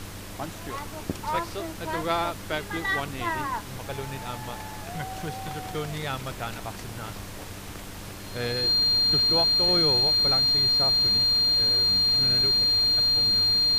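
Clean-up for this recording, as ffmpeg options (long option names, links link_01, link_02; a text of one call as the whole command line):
ffmpeg -i in.wav -af "bandreject=frequency=98.6:width_type=h:width=4,bandreject=frequency=197.2:width_type=h:width=4,bandreject=frequency=295.8:width_type=h:width=4,bandreject=frequency=4200:width=30,afftdn=noise_reduction=30:noise_floor=-39" out.wav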